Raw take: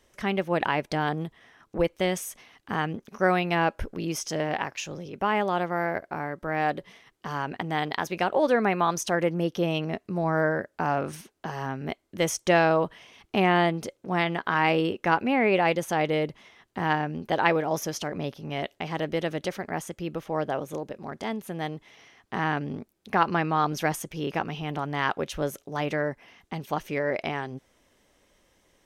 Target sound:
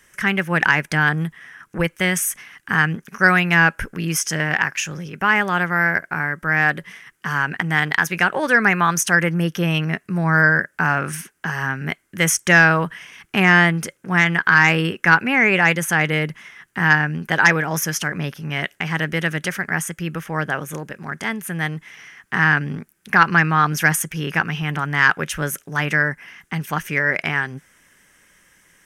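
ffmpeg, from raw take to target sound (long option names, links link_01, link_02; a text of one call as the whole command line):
ffmpeg -i in.wav -filter_complex "[0:a]equalizer=frequency=160:width_type=o:width=0.67:gain=10,equalizer=frequency=630:width_type=o:width=0.67:gain=-4,equalizer=frequency=1600:width_type=o:width=0.67:gain=9,equalizer=frequency=4000:width_type=o:width=0.67:gain=-10,equalizer=frequency=10000:width_type=o:width=0.67:gain=5,acrossover=split=1400[link_01][link_02];[link_02]aeval=exprs='0.422*sin(PI/2*2.24*val(0)/0.422)':channel_layout=same[link_03];[link_01][link_03]amix=inputs=2:normalize=0,volume=1dB" out.wav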